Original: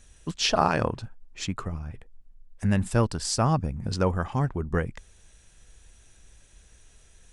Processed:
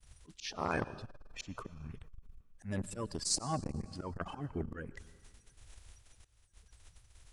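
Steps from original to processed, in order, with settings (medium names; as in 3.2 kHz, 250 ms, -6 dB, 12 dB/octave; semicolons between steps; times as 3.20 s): coarse spectral quantiser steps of 30 dB; expander -47 dBFS; slow attack 515 ms; reverberation RT60 1.7 s, pre-delay 88 ms, DRR 17.5 dB; transformer saturation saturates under 650 Hz; trim +1.5 dB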